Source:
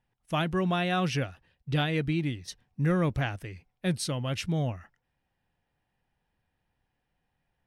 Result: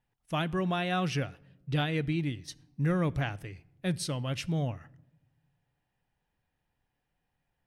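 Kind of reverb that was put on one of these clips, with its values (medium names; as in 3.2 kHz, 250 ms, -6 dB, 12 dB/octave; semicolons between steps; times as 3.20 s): simulated room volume 3400 m³, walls furnished, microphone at 0.32 m; trim -2.5 dB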